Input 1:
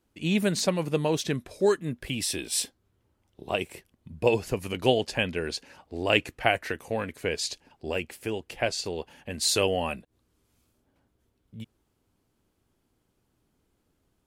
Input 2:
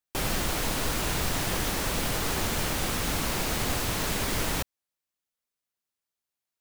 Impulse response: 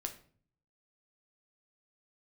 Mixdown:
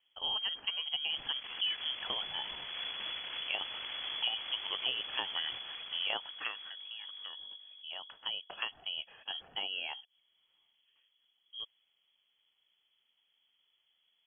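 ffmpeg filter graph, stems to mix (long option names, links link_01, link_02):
-filter_complex "[0:a]acompressor=threshold=-31dB:ratio=6,volume=9dB,afade=type=out:start_time=6.33:duration=0.3:silence=0.251189,afade=type=in:start_time=7.79:duration=0.49:silence=0.298538,asplit=2[link_01][link_02];[1:a]aeval=exprs='val(0)+0.00891*(sin(2*PI*50*n/s)+sin(2*PI*2*50*n/s)/2+sin(2*PI*3*50*n/s)/3+sin(2*PI*4*50*n/s)/4+sin(2*PI*5*50*n/s)/5)':channel_layout=same,aeval=exprs='clip(val(0),-1,0.0178)':channel_layout=same,adelay=950,volume=-11dB,asplit=2[link_03][link_04];[link_04]volume=-5dB[link_05];[link_02]apad=whole_len=333252[link_06];[link_03][link_06]sidechaincompress=threshold=-41dB:ratio=3:attack=8.9:release=230[link_07];[link_05]aecho=0:1:560|1120|1680|2240|2800:1|0.37|0.137|0.0507|0.0187[link_08];[link_01][link_07][link_08]amix=inputs=3:normalize=0,lowpass=frequency=2900:width_type=q:width=0.5098,lowpass=frequency=2900:width_type=q:width=0.6013,lowpass=frequency=2900:width_type=q:width=0.9,lowpass=frequency=2900:width_type=q:width=2.563,afreqshift=-3400"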